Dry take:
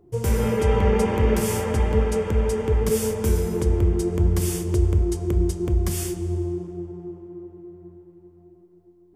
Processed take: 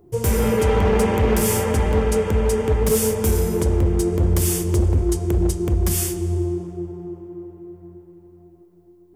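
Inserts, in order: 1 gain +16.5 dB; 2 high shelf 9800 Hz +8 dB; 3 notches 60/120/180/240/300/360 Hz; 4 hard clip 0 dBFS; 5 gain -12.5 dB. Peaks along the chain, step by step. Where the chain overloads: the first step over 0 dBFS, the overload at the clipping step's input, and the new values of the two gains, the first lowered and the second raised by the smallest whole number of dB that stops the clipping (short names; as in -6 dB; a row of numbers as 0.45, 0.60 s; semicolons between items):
+9.0, +10.0, +9.5, 0.0, -12.5 dBFS; step 1, 9.5 dB; step 1 +6.5 dB, step 5 -2.5 dB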